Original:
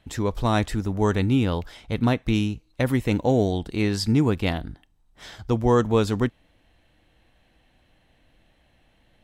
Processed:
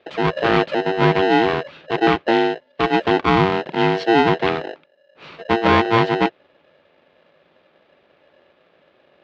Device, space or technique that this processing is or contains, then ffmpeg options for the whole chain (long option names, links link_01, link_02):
ring modulator pedal into a guitar cabinet: -af "aeval=exprs='val(0)*sgn(sin(2*PI*570*n/s))':channel_layout=same,highpass=97,equalizer=frequency=110:width_type=q:width=4:gain=-4,equalizer=frequency=160:width_type=q:width=4:gain=7,equalizer=frequency=370:width_type=q:width=4:gain=7,lowpass=frequency=3600:width=0.5412,lowpass=frequency=3600:width=1.3066,volume=3.5dB"